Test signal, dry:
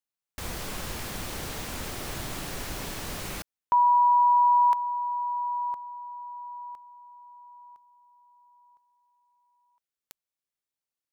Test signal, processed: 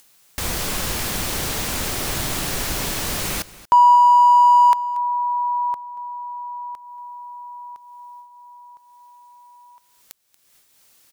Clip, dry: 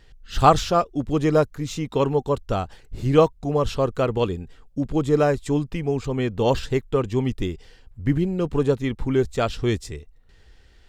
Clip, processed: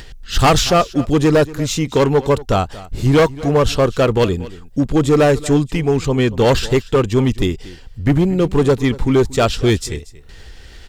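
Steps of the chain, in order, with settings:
noise gate with hold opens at −52 dBFS, hold 416 ms, range −9 dB
high-shelf EQ 3,000 Hz +5 dB
upward compression, threshold −38 dBFS
hard clipping −16.5 dBFS
single-tap delay 233 ms −18.5 dB
level +8.5 dB

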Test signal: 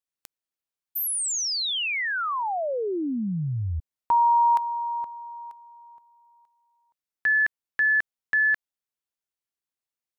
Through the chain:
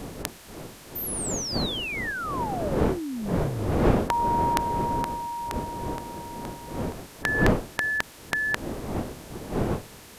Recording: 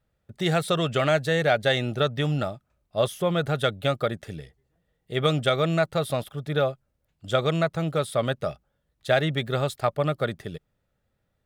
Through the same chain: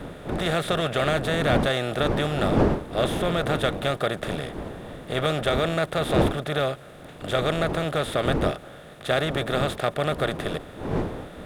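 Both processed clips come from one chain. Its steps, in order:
compressor on every frequency bin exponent 0.4
wind on the microphone 430 Hz −24 dBFS
level −6 dB

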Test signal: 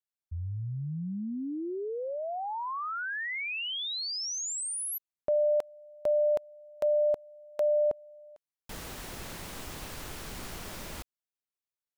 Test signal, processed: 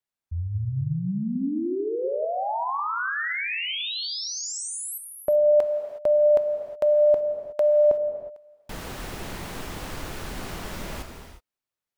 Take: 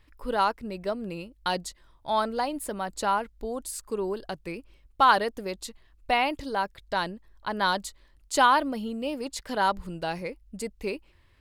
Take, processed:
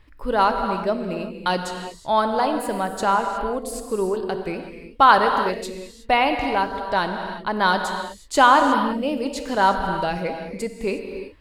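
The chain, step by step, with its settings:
high-shelf EQ 3,600 Hz −7 dB
reverb whose tail is shaped and stops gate 390 ms flat, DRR 5 dB
level +6.5 dB

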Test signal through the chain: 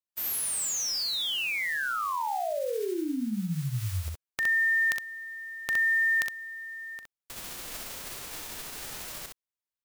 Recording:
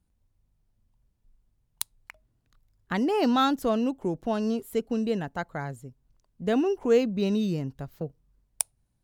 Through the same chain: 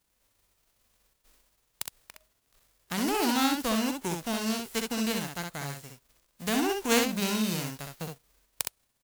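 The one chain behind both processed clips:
spectral envelope flattened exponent 0.3
ambience of single reflections 41 ms −17 dB, 64 ms −4 dB
level −4.5 dB

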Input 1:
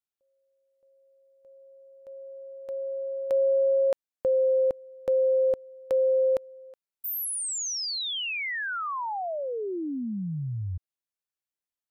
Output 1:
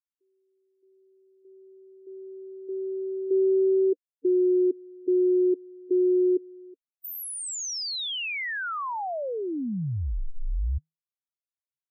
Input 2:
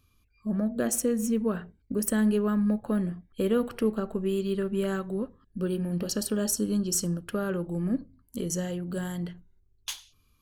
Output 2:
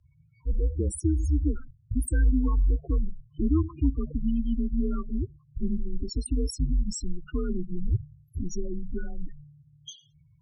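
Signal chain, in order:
spectral peaks only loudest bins 8
low-shelf EQ 240 Hz +6.5 dB
frequency shifter −160 Hz

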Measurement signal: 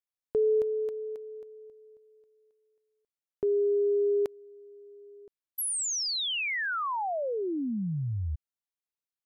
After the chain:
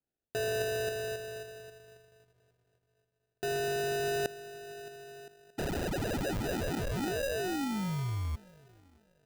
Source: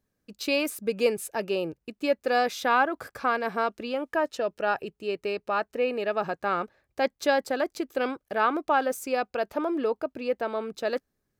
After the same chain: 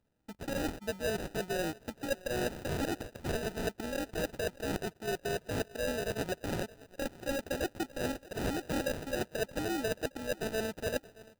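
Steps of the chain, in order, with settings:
samples in bit-reversed order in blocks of 16 samples
reversed playback
downward compressor, threshold −31 dBFS
reversed playback
feedback echo with a high-pass in the loop 622 ms, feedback 37%, high-pass 280 Hz, level −19.5 dB
sample-rate reduction 1,100 Hz, jitter 0%

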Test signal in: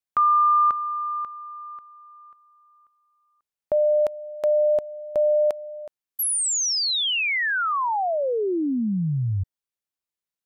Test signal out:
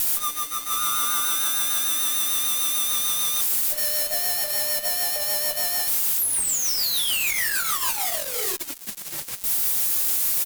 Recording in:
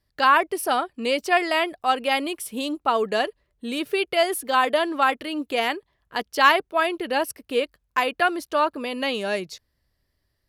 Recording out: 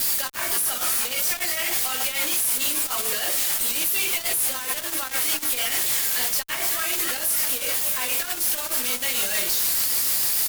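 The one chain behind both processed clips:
spike at every zero crossing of −16 dBFS
echo with shifted repeats 295 ms, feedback 64%, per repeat +110 Hz, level −17 dB
rectangular room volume 250 cubic metres, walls furnished, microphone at 2.2 metres
compressor whose output falls as the input rises −22 dBFS, ratio −1
bass and treble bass 0 dB, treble −6 dB
rotating-speaker cabinet horn 6.7 Hz
first difference
fuzz pedal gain 48 dB, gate −41 dBFS
level −7 dB

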